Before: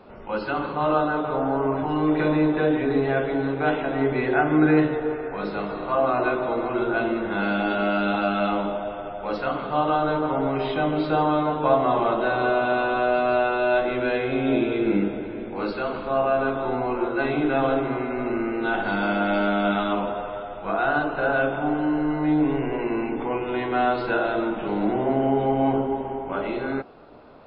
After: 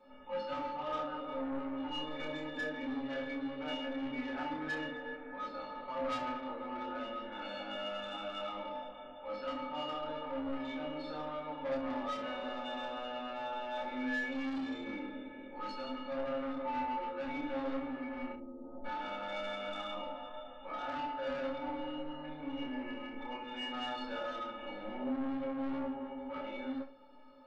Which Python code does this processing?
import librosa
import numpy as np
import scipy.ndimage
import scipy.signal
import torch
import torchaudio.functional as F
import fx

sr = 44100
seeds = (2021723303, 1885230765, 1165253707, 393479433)

y = fx.low_shelf(x, sr, hz=340.0, db=-5.0)
y = fx.stiff_resonator(y, sr, f0_hz=260.0, decay_s=0.38, stiffness=0.03)
y = 10.0 ** (-38.5 / 20.0) * np.tanh(y / 10.0 ** (-38.5 / 20.0))
y = fx.gaussian_blur(y, sr, sigma=13.0, at=(18.32, 18.84), fade=0.02)
y = fx.room_early_taps(y, sr, ms=(28, 67), db=(-3.5, -12.0))
y = fx.room_shoebox(y, sr, seeds[0], volume_m3=200.0, walls='furnished', distance_m=0.35)
y = y * librosa.db_to_amplitude(5.0)